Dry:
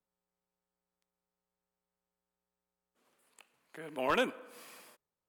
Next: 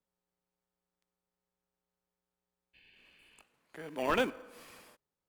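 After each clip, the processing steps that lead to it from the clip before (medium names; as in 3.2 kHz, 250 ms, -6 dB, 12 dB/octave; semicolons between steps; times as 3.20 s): spectral replace 2.77–3.39 s, 1.5–4.9 kHz after; treble shelf 7.4 kHz -5 dB; in parallel at -12 dB: sample-rate reducer 1.3 kHz, jitter 0%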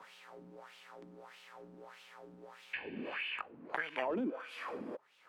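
wah-wah 1.6 Hz 240–3000 Hz, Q 3.2; peak limiter -38 dBFS, peak gain reduction 11.5 dB; three bands compressed up and down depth 100%; trim +16.5 dB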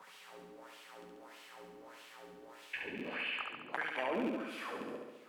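rattle on loud lows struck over -42 dBFS, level -37 dBFS; treble shelf 7 kHz +10 dB; on a send: flutter echo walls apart 11.9 m, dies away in 1.1 s; on the sum: trim -2 dB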